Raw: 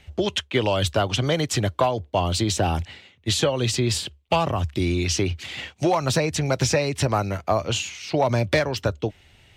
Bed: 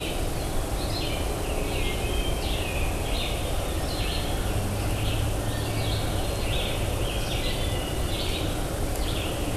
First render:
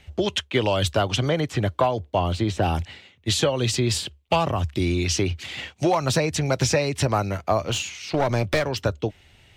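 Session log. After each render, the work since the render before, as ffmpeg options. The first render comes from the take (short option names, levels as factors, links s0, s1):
-filter_complex "[0:a]asettb=1/sr,asplit=3[s0][s1][s2];[s0]atrim=end=1.254[s3];[s1]atrim=start=1.25:end=2.62,asetpts=PTS-STARTPTS,afade=t=in:d=0.004:c=qsin,afade=t=out:st=1.366:d=0.004:c=qsin,acrossover=split=2800[s4][s5];[s5]acompressor=threshold=0.00891:ratio=4:attack=1:release=60[s6];[s4][s6]amix=inputs=2:normalize=0[s7];[s2]atrim=start=2.616[s8];[s3][s7]acrossfade=d=0.004:c1=hsin:c2=qsin[s9];[s9][s8]acrossfade=d=0.004:c1=qsin:c2=hsin,asettb=1/sr,asplit=3[s10][s11][s12];[s10]atrim=end=7.664[s13];[s11]atrim=start=7.66:end=8.69,asetpts=PTS-STARTPTS,afade=t=in:d=0.004:c=qsin,afade=t=out:st=1.026:d=0.004:c=qsin,aeval=exprs='clip(val(0),-1,0.0708)':c=same[s14];[s12]atrim=start=8.686[s15];[s13][s14]acrossfade=d=0.004:c1=hsin:c2=qsin[s16];[s16][s15]acrossfade=d=0.004:c1=qsin:c2=hsin"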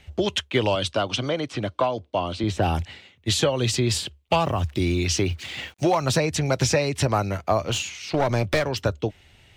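-filter_complex "[0:a]asettb=1/sr,asplit=3[s0][s1][s2];[s0]atrim=end=0.754[s3];[s1]atrim=start=0.75:end=2.44,asetpts=PTS-STARTPTS,afade=t=in:d=0.004:c=qsin,afade=t=out:st=1.686:d=0.004:c=qsin,highpass=150,equalizer=f=160:t=q:w=4:g=-7,equalizer=f=410:t=q:w=4:g=-5,equalizer=f=800:t=q:w=4:g=-4,equalizer=f=1800:t=q:w=4:g=-6,equalizer=f=7200:t=q:w=4:g=-7,lowpass=f=8900:w=0.5412,lowpass=f=8900:w=1.3066[s4];[s2]atrim=start=2.436[s5];[s3][s4]acrossfade=d=0.004:c1=hsin:c2=qsin[s6];[s6][s5]acrossfade=d=0.004:c1=qsin:c2=hsin,asettb=1/sr,asplit=3[s7][s8][s9];[s7]atrim=end=4.424[s10];[s8]atrim=start=4.42:end=6.01,asetpts=PTS-STARTPTS,afade=t=in:d=0.004:c=qsin,afade=t=out:st=1.586:d=0.004:c=qsin,acrusher=bits=8:mix=0:aa=0.5[s11];[s9]atrim=start=6.006[s12];[s10][s11]acrossfade=d=0.004:c1=hsin:c2=qsin[s13];[s13][s12]acrossfade=d=0.004:c1=qsin:c2=hsin"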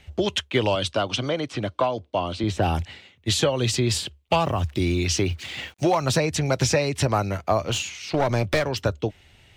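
-af anull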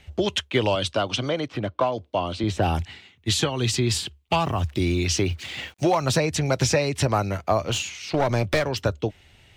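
-filter_complex "[0:a]asettb=1/sr,asplit=3[s0][s1][s2];[s0]atrim=end=1.484[s3];[s1]atrim=start=1.48:end=1.92,asetpts=PTS-STARTPTS,afade=t=in:d=0.004:c=qsin,afade=t=out:st=0.436:d=0.004:c=qsin,adynamicsmooth=sensitivity=2.5:basefreq=2800[s4];[s2]atrim=start=1.916[s5];[s3][s4]acrossfade=d=0.004:c1=hsin:c2=qsin[s6];[s6][s5]acrossfade=d=0.004:c1=qsin:c2=hsin,asettb=1/sr,asplit=3[s7][s8][s9];[s7]atrim=end=2.794[s10];[s8]atrim=start=2.79:end=4.55,asetpts=PTS-STARTPTS,afade=t=in:d=0.004:c=qsin,afade=t=out:st=1.756:d=0.004:c=qsin,equalizer=f=550:t=o:w=0.26:g=-12.5[s11];[s9]atrim=start=4.546[s12];[s10][s11]acrossfade=d=0.004:c1=hsin:c2=qsin[s13];[s13][s12]acrossfade=d=0.004:c1=qsin:c2=hsin"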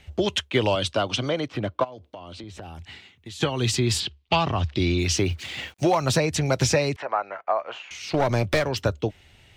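-filter_complex "[0:a]asplit=3[s0][s1][s2];[s0]afade=t=out:st=1.83:d=0.02[s3];[s1]acompressor=threshold=0.0158:ratio=8:attack=3.2:release=140:knee=1:detection=peak,afade=t=in:st=1.83:d=0.02,afade=t=out:st=3.4:d=0.02[s4];[s2]afade=t=in:st=3.4:d=0.02[s5];[s3][s4][s5]amix=inputs=3:normalize=0,asettb=1/sr,asplit=3[s6][s7][s8];[s6]atrim=end=4.004[s9];[s7]atrim=start=4:end=4.99,asetpts=PTS-STARTPTS,afade=t=in:d=0.004:c=qsin,afade=t=out:st=0.986:d=0.004:c=qsin,lowpass=f=4400:t=q:w=1.6[s10];[s8]atrim=start=4.986[s11];[s9][s10]acrossfade=d=0.004:c1=hsin:c2=qsin[s12];[s12][s11]acrossfade=d=0.004:c1=qsin:c2=hsin,asettb=1/sr,asplit=3[s13][s14][s15];[s13]atrim=end=6.964[s16];[s14]atrim=start=6.96:end=7.91,asetpts=PTS-STARTPTS,afade=t=in:d=0.004:c=qsin,afade=t=out:st=0.946:d=0.004:c=qsin,asuperpass=centerf=1100:order=4:qfactor=0.81[s17];[s15]atrim=start=7.906[s18];[s16][s17]acrossfade=d=0.004:c1=hsin:c2=qsin[s19];[s19][s18]acrossfade=d=0.004:c1=qsin:c2=hsin"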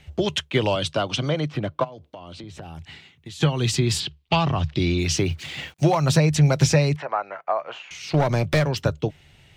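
-af "equalizer=f=150:w=6.1:g=12.5"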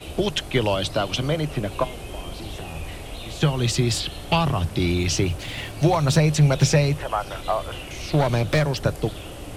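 -filter_complex "[1:a]volume=0.398[s0];[0:a][s0]amix=inputs=2:normalize=0"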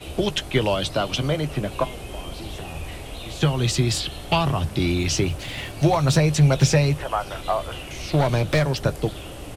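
-filter_complex "[0:a]asplit=2[s0][s1];[s1]adelay=15,volume=0.211[s2];[s0][s2]amix=inputs=2:normalize=0"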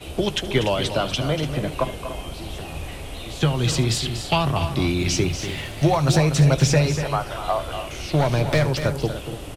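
-af "aecho=1:1:74|240|291:0.112|0.316|0.237"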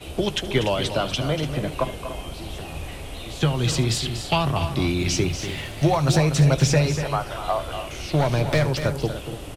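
-af "volume=0.891"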